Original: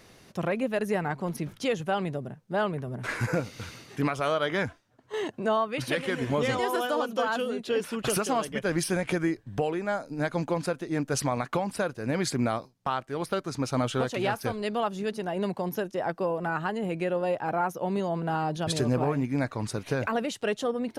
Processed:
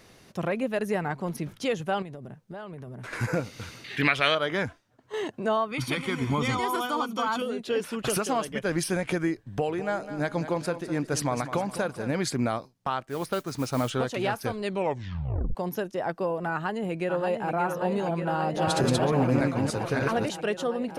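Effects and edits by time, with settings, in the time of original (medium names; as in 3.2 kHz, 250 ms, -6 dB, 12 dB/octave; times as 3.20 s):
2.02–3.13 s: compression 12:1, threshold -36 dBFS
3.84–4.35 s: high-order bell 2.6 kHz +14.5 dB
5.71–7.42 s: comb 0.9 ms
9.48–12.12 s: feedback delay 205 ms, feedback 41%, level -12 dB
13.08–13.90 s: modulation noise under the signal 20 dB
14.63 s: tape stop 0.92 s
16.51–17.56 s: echo throw 580 ms, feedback 85%, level -6 dB
18.25–20.30 s: chunks repeated in reverse 291 ms, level -0.5 dB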